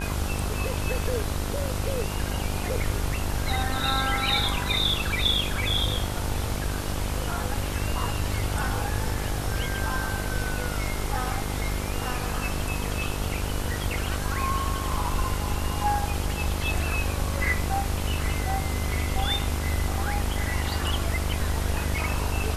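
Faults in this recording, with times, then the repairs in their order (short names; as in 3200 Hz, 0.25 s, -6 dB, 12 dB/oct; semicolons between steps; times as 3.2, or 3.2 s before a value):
buzz 50 Hz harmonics 30 -31 dBFS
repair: de-hum 50 Hz, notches 30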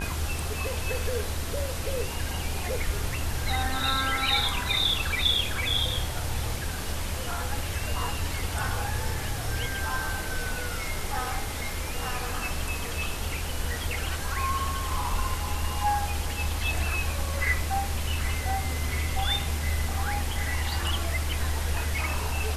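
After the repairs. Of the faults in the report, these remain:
none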